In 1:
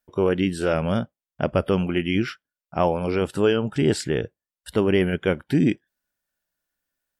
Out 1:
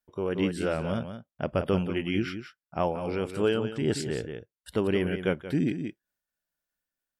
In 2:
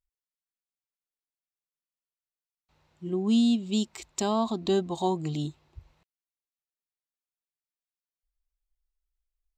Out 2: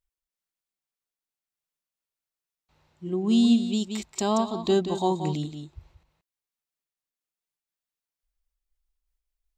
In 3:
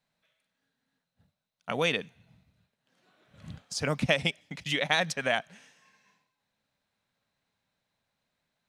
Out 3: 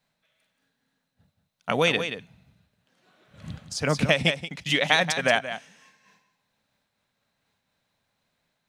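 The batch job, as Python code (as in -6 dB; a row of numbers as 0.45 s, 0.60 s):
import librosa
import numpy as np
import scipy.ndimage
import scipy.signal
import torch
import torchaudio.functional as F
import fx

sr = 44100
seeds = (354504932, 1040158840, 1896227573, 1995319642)

p1 = x + fx.echo_single(x, sr, ms=179, db=-9.0, dry=0)
p2 = fx.am_noise(p1, sr, seeds[0], hz=5.7, depth_pct=55)
y = p2 * 10.0 ** (-30 / 20.0) / np.sqrt(np.mean(np.square(p2)))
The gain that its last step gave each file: -4.0 dB, +4.5 dB, +7.5 dB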